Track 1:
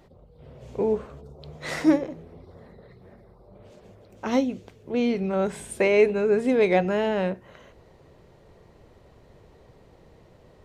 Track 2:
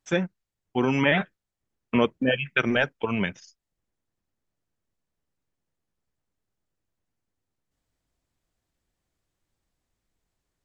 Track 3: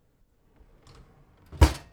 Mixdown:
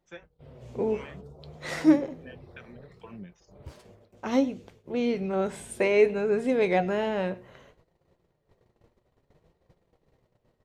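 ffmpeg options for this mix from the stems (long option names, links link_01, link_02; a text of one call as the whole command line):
ffmpeg -i stem1.wav -i stem2.wav -i stem3.wav -filter_complex "[0:a]agate=range=-19dB:threshold=-50dB:ratio=16:detection=peak,volume=1.5dB,asplit=2[link_01][link_02];[link_02]volume=-22dB[link_03];[1:a]alimiter=limit=-13dB:level=0:latency=1:release=242,volume=-10dB[link_04];[2:a]adelay=2050,volume=-8.5dB[link_05];[link_04][link_05]amix=inputs=2:normalize=0,acrossover=split=430[link_06][link_07];[link_06]aeval=exprs='val(0)*(1-1/2+1/2*cos(2*PI*2.5*n/s))':channel_layout=same[link_08];[link_07]aeval=exprs='val(0)*(1-1/2-1/2*cos(2*PI*2.5*n/s))':channel_layout=same[link_09];[link_08][link_09]amix=inputs=2:normalize=0,alimiter=level_in=4.5dB:limit=-24dB:level=0:latency=1:release=285,volume=-4.5dB,volume=0dB[link_10];[link_03]aecho=0:1:104:1[link_11];[link_01][link_10][link_11]amix=inputs=3:normalize=0,flanger=delay=5.6:depth=3:regen=72:speed=0.62:shape=sinusoidal" out.wav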